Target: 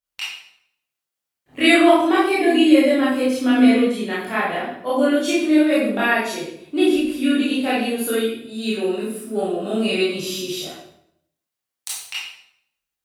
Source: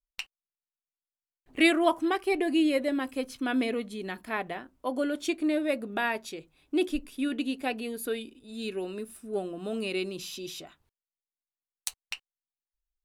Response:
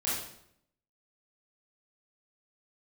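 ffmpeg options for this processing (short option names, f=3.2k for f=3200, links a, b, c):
-filter_complex "[0:a]highpass=86,asplit=2[a][b];[b]alimiter=limit=-20.5dB:level=0:latency=1,volume=-2.5dB[c];[a][c]amix=inputs=2:normalize=0[d];[1:a]atrim=start_sample=2205[e];[d][e]afir=irnorm=-1:irlink=0"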